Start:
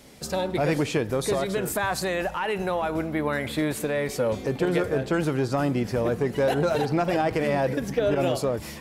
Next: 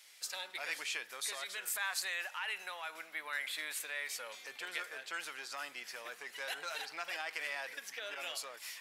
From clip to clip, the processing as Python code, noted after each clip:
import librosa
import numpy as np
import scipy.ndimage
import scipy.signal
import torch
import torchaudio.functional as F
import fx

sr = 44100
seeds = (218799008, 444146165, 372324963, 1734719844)

y = scipy.signal.sosfilt(scipy.signal.cheby1(2, 1.0, 2000.0, 'highpass', fs=sr, output='sos'), x)
y = y * 10.0 ** (-4.0 / 20.0)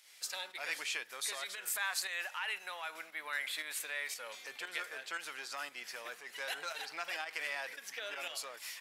y = fx.volume_shaper(x, sr, bpm=116, per_beat=1, depth_db=-7, release_ms=191.0, shape='fast start')
y = y * 10.0 ** (1.0 / 20.0)